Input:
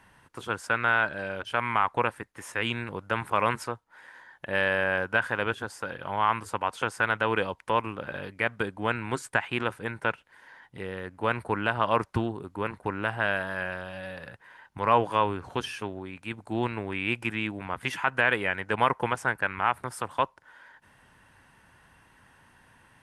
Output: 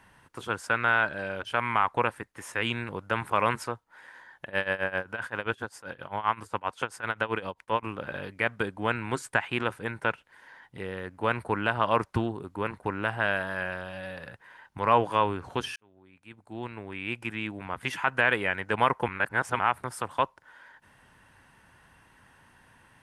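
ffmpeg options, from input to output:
ffmpeg -i in.wav -filter_complex "[0:a]asettb=1/sr,asplit=3[link_01][link_02][link_03];[link_01]atrim=end=4.454[link_04];[link_02]atrim=start=4.45:end=7.83,asetpts=PTS-STARTPTS,afade=type=in:duration=0.004:curve=qsin,afade=type=out:start_time=3.376:duration=0.004:curve=qsin,tremolo=f=7.6:d=0.87[link_05];[link_03]atrim=start=7.826[link_06];[link_04][link_05]acrossfade=duration=0.004:curve1=hsin:curve2=qsin[link_07];[link_07][link_06]acrossfade=duration=0.004:curve1=qsin:curve2=hsin,asplit=4[link_08][link_09][link_10][link_11];[link_08]atrim=end=15.76,asetpts=PTS-STARTPTS,afade=type=out:start_time=15.756:duration=0.004:curve=hsin[link_12];[link_09]atrim=start=15.76:end=19.082,asetpts=PTS-STARTPTS,afade=type=in:duration=2.35[link_13];[link_10]atrim=start=19.078:end=19.592,asetpts=PTS-STARTPTS,areverse[link_14];[link_11]atrim=start=19.588[link_15];[link_12][link_13]concat=n=2:v=0:a=1[link_16];[link_16][link_14]acrossfade=duration=0.004:curve1=hsin:curve2=hsin[link_17];[link_17][link_15]acrossfade=duration=0.004:curve1=hsin:curve2=hsin" out.wav

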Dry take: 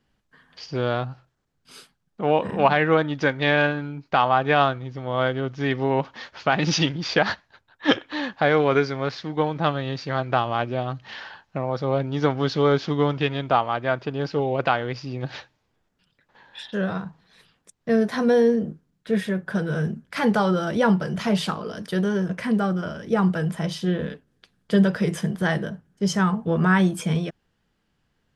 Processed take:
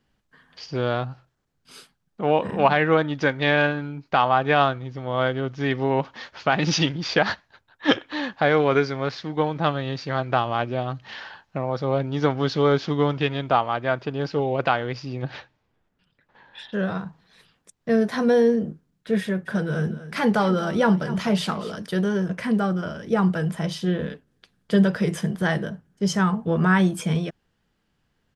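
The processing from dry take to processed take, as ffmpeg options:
ffmpeg -i in.wav -filter_complex "[0:a]asettb=1/sr,asplit=3[link_01][link_02][link_03];[link_01]atrim=end=15.224[link_04];[link_02]atrim=start=15.22:end=16.79,asetpts=PTS-STARTPTS,afade=type=in:duration=0.004:curve=qsin,afade=type=out:start_time=1.566:duration=0.004:curve=qsin,bass=frequency=250:gain=1,treble=frequency=4000:gain=-8[link_05];[link_03]atrim=start=16.786[link_06];[link_04][link_05]acrossfade=duration=0.004:curve1=hsin:curve2=qsin[link_07];[link_07][link_06]acrossfade=duration=0.004:curve1=qsin:curve2=hsin,asplit=3[link_08][link_09][link_10];[link_08]afade=type=out:start_time=19.45:duration=0.02[link_11];[link_09]aecho=1:1:244:0.188,afade=type=in:start_time=19.45:duration=0.02,afade=type=out:start_time=21.75:duration=0.02[link_12];[link_10]afade=type=in:start_time=21.75:duration=0.02[link_13];[link_11][link_12][link_13]amix=inputs=3:normalize=0" out.wav

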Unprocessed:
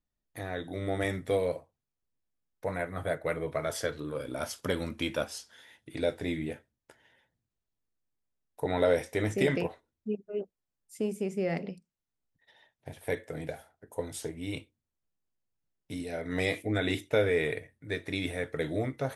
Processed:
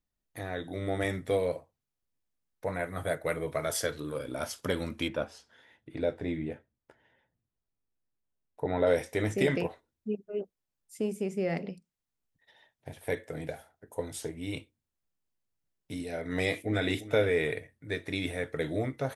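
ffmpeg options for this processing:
ffmpeg -i in.wav -filter_complex "[0:a]asettb=1/sr,asplit=3[link_01][link_02][link_03];[link_01]atrim=end=2.834[link_04];[link_02]atrim=start=2.83:end=4.19,asetpts=PTS-STARTPTS,afade=type=in:duration=0.004:curve=qsin,afade=type=out:start_time=1.356:duration=0.004:curve=qsin,highshelf=frequency=5600:gain=9[link_05];[link_03]atrim=start=4.186[link_06];[link_04][link_05]acrossfade=duration=0.004:curve1=hsin:curve2=qsin[link_07];[link_07][link_06]acrossfade=duration=0.004:curve1=qsin:curve2=hsin,asettb=1/sr,asplit=3[link_08][link_09][link_10];[link_08]atrim=end=5.084[link_11];[link_09]atrim=start=5.08:end=8.87,asetpts=PTS-STARTPTS,afade=type=in:duration=0.004:curve=qsin,afade=type=out:start_time=3.786:duration=0.004:curve=qsin,lowpass=frequency=1500:poles=1[link_12];[link_10]atrim=start=8.866[link_13];[link_11][link_12]acrossfade=duration=0.004:curve1=hsin:curve2=qsin[link_14];[link_14][link_13]acrossfade=duration=0.004:curve1=qsin:curve2=hsin,asplit=2[link_15][link_16];[link_16]afade=type=in:start_time=16.32:duration=0.01,afade=type=out:start_time=16.9:duration=0.01,aecho=0:1:350|700:0.177828|0.0266742[link_17];[link_15][link_17]amix=inputs=2:normalize=0" out.wav

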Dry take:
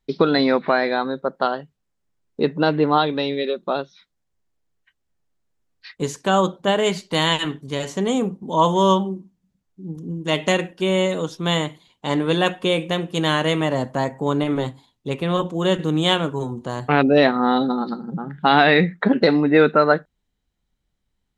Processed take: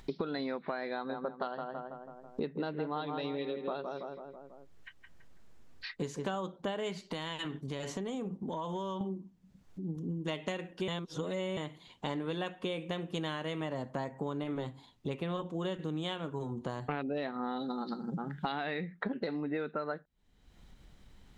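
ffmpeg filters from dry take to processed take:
ffmpeg -i in.wav -filter_complex "[0:a]asettb=1/sr,asplit=3[link_01][link_02][link_03];[link_01]atrim=end=0.934[link_04];[link_02]atrim=start=0.93:end=6.36,asetpts=PTS-STARTPTS,afade=type=in:duration=0.004:curve=qsin,afade=type=out:start_time=5.426:duration=0.004:curve=qsin,asplit=2[link_05][link_06];[link_06]adelay=164,lowpass=frequency=1700:poles=1,volume=-6.5dB,asplit=2[link_07][link_08];[link_08]adelay=164,lowpass=frequency=1700:poles=1,volume=0.41,asplit=2[link_09][link_10];[link_10]adelay=164,lowpass=frequency=1700:poles=1,volume=0.41,asplit=2[link_11][link_12];[link_12]adelay=164,lowpass=frequency=1700:poles=1,volume=0.41,asplit=2[link_13][link_14];[link_14]adelay=164,lowpass=frequency=1700:poles=1,volume=0.41[link_15];[link_05][link_07][link_09][link_11][link_13][link_15]amix=inputs=6:normalize=0,atrim=end_sample=239463[link_16];[link_03]atrim=start=6.356[link_17];[link_04][link_16]acrossfade=duration=0.004:curve1=hsin:curve2=qsin[link_18];[link_18][link_17]acrossfade=duration=0.004:curve1=qsin:curve2=hsin,asettb=1/sr,asplit=3[link_19][link_20][link_21];[link_19]atrim=end=7.054[link_22];[link_20]atrim=start=7.05:end=9.01,asetpts=PTS-STARTPTS,afade=type=in:duration=0.004:curve=qsin,afade=type=out:start_time=1.956:duration=0.004:curve=qsin,acompressor=threshold=-28dB:ratio=6:attack=3.2:release=140:knee=1:detection=peak[link_23];[link_21]atrim=start=9.006[link_24];[link_22][link_23]acrossfade=duration=0.004:curve1=hsin:curve2=qsin[link_25];[link_25][link_24]acrossfade=duration=0.004:curve1=qsin:curve2=hsin,asettb=1/sr,asplit=3[link_26][link_27][link_28];[link_26]atrim=end=17.594[link_29];[link_27]atrim=start=17.59:end=18.52,asetpts=PTS-STARTPTS,afade=type=in:duration=0.004:curve=qsin,afade=type=out:start_time=0.926:duration=0.004:curve=qsin,bass=frequency=250:gain=-2,treble=frequency=4000:gain=12[link_30];[link_28]atrim=start=18.516[link_31];[link_29][link_30]acrossfade=duration=0.004:curve1=hsin:curve2=qsin[link_32];[link_32][link_31]acrossfade=duration=0.004:curve1=qsin:curve2=hsin,asplit=3[link_33][link_34][link_35];[link_33]atrim=end=10.882[link_36];[link_34]atrim=start=10.878:end=11.572,asetpts=PTS-STARTPTS,areverse[link_37];[link_35]atrim=start=11.568[link_38];[link_36][link_37]acrossfade=duration=0.004:curve1=hsin:curve2=hsin[link_39];[link_39][link_38]acrossfade=duration=0.004:curve1=hsin:curve2=hsin,acompressor=threshold=-28dB:ratio=10,highshelf=frequency=7500:gain=-9.5,acompressor=mode=upward:threshold=-32dB:ratio=2.5,volume=-4.5dB" out.wav

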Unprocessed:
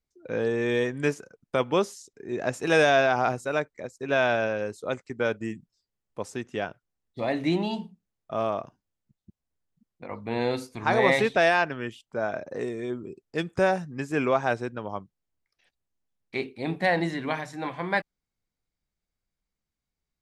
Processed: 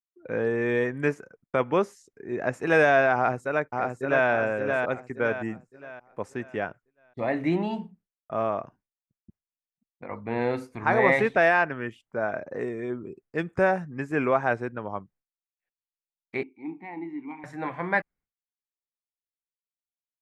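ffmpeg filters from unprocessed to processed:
ffmpeg -i in.wav -filter_complex "[0:a]asplit=2[link_01][link_02];[link_02]afade=type=in:start_time=3.15:duration=0.01,afade=type=out:start_time=4.28:duration=0.01,aecho=0:1:570|1140|1710|2280|2850:0.630957|0.252383|0.100953|0.0403813|0.0161525[link_03];[link_01][link_03]amix=inputs=2:normalize=0,asettb=1/sr,asplit=3[link_04][link_05][link_06];[link_04]atrim=end=16.434[link_07];[link_05]atrim=start=16.43:end=17.44,asetpts=PTS-STARTPTS,afade=type=in:duration=0.004:curve=qsin,afade=type=out:start_time=1.006:duration=0.004:curve=qsin,asplit=3[link_08][link_09][link_10];[link_08]bandpass=frequency=300:width_type=q:width=8,volume=0dB[link_11];[link_09]bandpass=frequency=870:width_type=q:width=8,volume=-6dB[link_12];[link_10]bandpass=frequency=2240:width_type=q:width=8,volume=-9dB[link_13];[link_11][link_12][link_13]amix=inputs=3:normalize=0[link_14];[link_06]atrim=start=17.436[link_15];[link_07][link_14]acrossfade=duration=0.004:curve1=hsin:curve2=qsin[link_16];[link_16][link_15]acrossfade=duration=0.004:curve1=qsin:curve2=hsin,agate=range=-33dB:threshold=-53dB:ratio=3:detection=peak,highshelf=frequency=2700:width_type=q:width=1.5:gain=-9" out.wav

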